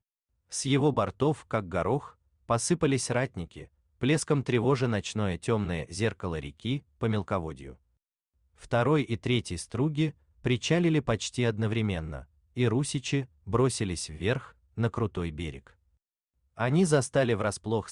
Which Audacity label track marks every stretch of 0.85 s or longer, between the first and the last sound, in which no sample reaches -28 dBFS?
7.520000	8.730000	silence
15.500000	16.600000	silence